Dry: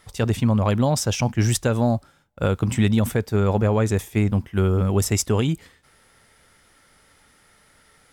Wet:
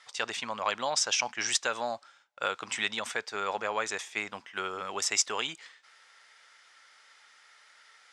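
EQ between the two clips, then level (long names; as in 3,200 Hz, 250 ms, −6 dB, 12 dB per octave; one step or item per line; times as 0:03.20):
high-pass filter 1,100 Hz 12 dB per octave
low-pass filter 7,100 Hz 24 dB per octave
+1.5 dB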